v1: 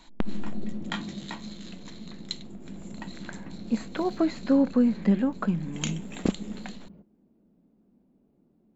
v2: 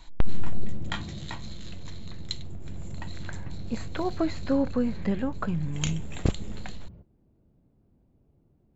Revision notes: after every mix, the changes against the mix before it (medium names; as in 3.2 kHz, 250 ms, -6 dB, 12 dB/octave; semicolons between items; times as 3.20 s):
master: add resonant low shelf 150 Hz +10.5 dB, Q 3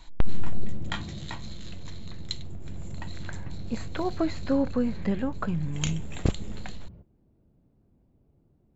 no change